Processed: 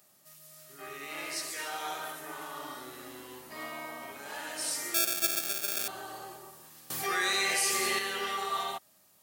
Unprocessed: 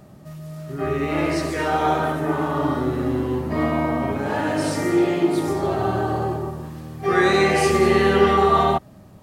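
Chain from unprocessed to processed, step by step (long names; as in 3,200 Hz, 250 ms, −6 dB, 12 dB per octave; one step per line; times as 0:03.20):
0:04.94–0:05.88: sample-rate reduction 1,000 Hz, jitter 0%
first difference
0:06.90–0:07.99: envelope flattener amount 70%
level +1 dB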